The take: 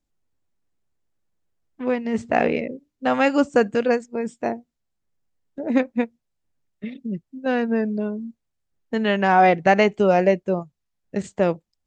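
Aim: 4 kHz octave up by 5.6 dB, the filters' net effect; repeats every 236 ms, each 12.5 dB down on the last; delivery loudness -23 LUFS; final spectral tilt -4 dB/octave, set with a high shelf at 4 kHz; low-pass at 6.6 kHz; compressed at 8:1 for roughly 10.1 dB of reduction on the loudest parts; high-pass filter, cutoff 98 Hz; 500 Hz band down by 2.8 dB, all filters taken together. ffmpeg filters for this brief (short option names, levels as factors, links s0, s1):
-af "highpass=98,lowpass=6600,equalizer=f=500:t=o:g=-3.5,highshelf=f=4000:g=6,equalizer=f=4000:t=o:g=5.5,acompressor=threshold=0.0794:ratio=8,aecho=1:1:236|472|708:0.237|0.0569|0.0137,volume=2"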